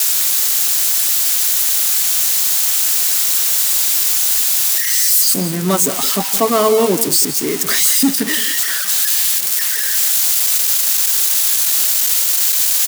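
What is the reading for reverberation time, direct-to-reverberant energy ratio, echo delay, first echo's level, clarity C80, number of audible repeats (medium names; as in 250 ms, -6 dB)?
no reverb, no reverb, 167 ms, -13.5 dB, no reverb, 2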